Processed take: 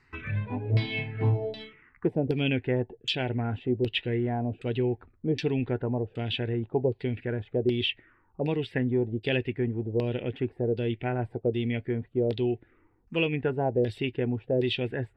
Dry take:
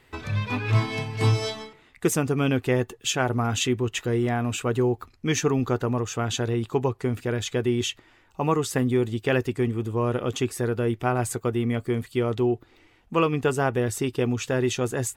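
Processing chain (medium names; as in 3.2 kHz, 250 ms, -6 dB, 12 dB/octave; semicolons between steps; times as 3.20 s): LFO low-pass saw down 1.3 Hz 470–4900 Hz; touch-sensitive phaser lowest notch 580 Hz, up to 1.2 kHz, full sweep at -24 dBFS; trim -3.5 dB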